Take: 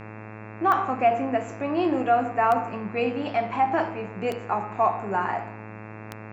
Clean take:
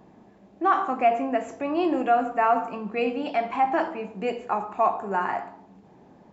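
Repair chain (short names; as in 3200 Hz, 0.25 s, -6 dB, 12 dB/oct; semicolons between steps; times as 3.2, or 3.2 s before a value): de-click; de-hum 108 Hz, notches 25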